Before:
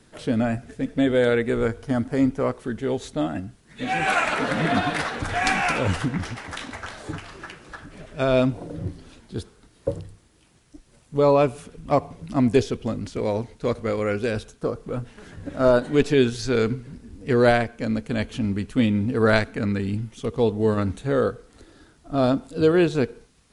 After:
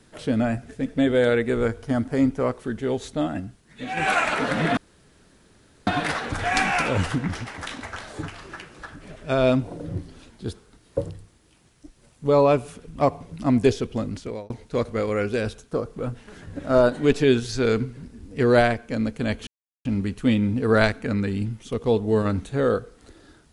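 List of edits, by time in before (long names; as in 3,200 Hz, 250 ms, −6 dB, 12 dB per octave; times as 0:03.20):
0:03.46–0:03.97: fade out, to −6.5 dB
0:04.77: splice in room tone 1.10 s
0:13.04–0:13.40: fade out
0:18.37: splice in silence 0.38 s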